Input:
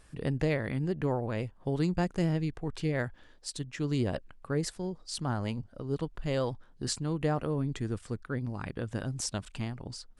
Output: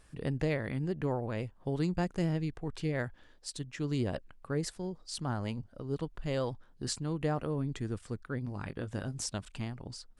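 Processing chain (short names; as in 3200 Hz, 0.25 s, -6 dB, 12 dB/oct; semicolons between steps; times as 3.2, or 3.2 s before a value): 8.44–9.24 doubler 20 ms -10 dB; gain -2.5 dB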